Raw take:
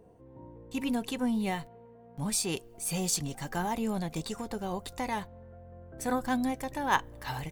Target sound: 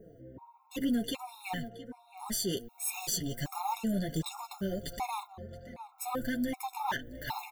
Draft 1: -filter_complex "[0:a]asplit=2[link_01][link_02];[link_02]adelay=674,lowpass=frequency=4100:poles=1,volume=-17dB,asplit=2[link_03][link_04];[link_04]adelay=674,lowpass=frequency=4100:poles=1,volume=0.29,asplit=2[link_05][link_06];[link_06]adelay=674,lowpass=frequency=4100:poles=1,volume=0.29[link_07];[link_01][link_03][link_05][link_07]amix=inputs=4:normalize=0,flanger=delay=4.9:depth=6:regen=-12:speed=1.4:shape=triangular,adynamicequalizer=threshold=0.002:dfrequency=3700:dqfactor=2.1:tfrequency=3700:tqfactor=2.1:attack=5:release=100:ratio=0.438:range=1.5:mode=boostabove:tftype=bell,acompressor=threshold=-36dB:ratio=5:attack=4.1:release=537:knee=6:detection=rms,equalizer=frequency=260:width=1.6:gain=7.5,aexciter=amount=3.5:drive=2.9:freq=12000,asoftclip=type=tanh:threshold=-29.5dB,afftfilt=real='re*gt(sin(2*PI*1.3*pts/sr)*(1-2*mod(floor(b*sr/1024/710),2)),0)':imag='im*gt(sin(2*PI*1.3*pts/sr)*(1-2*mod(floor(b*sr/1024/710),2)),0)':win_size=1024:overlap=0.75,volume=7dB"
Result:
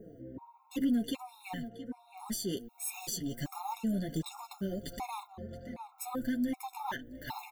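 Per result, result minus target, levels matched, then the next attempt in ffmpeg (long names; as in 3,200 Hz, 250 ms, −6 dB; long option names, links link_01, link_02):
downward compressor: peak gain reduction +7 dB; 250 Hz band +3.0 dB
-filter_complex "[0:a]asplit=2[link_01][link_02];[link_02]adelay=674,lowpass=frequency=4100:poles=1,volume=-17dB,asplit=2[link_03][link_04];[link_04]adelay=674,lowpass=frequency=4100:poles=1,volume=0.29,asplit=2[link_05][link_06];[link_06]adelay=674,lowpass=frequency=4100:poles=1,volume=0.29[link_07];[link_01][link_03][link_05][link_07]amix=inputs=4:normalize=0,flanger=delay=4.9:depth=6:regen=-12:speed=1.4:shape=triangular,adynamicequalizer=threshold=0.002:dfrequency=3700:dqfactor=2.1:tfrequency=3700:tqfactor=2.1:attack=5:release=100:ratio=0.438:range=1.5:mode=boostabove:tftype=bell,acompressor=threshold=-27dB:ratio=5:attack=4.1:release=537:knee=6:detection=rms,equalizer=frequency=260:width=1.6:gain=7.5,aexciter=amount=3.5:drive=2.9:freq=12000,asoftclip=type=tanh:threshold=-29.5dB,afftfilt=real='re*gt(sin(2*PI*1.3*pts/sr)*(1-2*mod(floor(b*sr/1024/710),2)),0)':imag='im*gt(sin(2*PI*1.3*pts/sr)*(1-2*mod(floor(b*sr/1024/710),2)),0)':win_size=1024:overlap=0.75,volume=7dB"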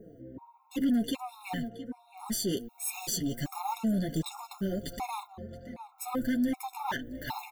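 250 Hz band +2.0 dB
-filter_complex "[0:a]asplit=2[link_01][link_02];[link_02]adelay=674,lowpass=frequency=4100:poles=1,volume=-17dB,asplit=2[link_03][link_04];[link_04]adelay=674,lowpass=frequency=4100:poles=1,volume=0.29,asplit=2[link_05][link_06];[link_06]adelay=674,lowpass=frequency=4100:poles=1,volume=0.29[link_07];[link_01][link_03][link_05][link_07]amix=inputs=4:normalize=0,flanger=delay=4.9:depth=6:regen=-12:speed=1.4:shape=triangular,adynamicequalizer=threshold=0.002:dfrequency=3700:dqfactor=2.1:tfrequency=3700:tqfactor=2.1:attack=5:release=100:ratio=0.438:range=1.5:mode=boostabove:tftype=bell,acompressor=threshold=-27dB:ratio=5:attack=4.1:release=537:knee=6:detection=rms,aexciter=amount=3.5:drive=2.9:freq=12000,asoftclip=type=tanh:threshold=-29.5dB,afftfilt=real='re*gt(sin(2*PI*1.3*pts/sr)*(1-2*mod(floor(b*sr/1024/710),2)),0)':imag='im*gt(sin(2*PI*1.3*pts/sr)*(1-2*mod(floor(b*sr/1024/710),2)),0)':win_size=1024:overlap=0.75,volume=7dB"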